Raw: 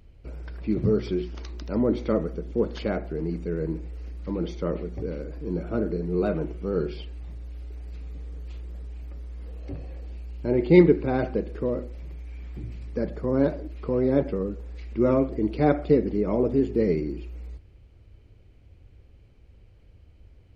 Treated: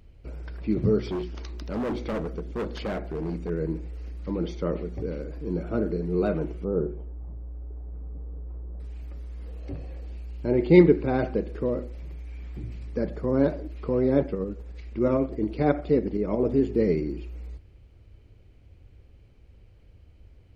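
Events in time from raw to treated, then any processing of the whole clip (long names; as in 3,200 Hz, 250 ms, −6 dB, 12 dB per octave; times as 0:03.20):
0:01.06–0:03.50: gain into a clipping stage and back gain 26 dB
0:06.64–0:08.80: low-pass filter 1,100 Hz 24 dB per octave
0:14.26–0:16.45: shaped tremolo saw up 11 Hz, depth 45%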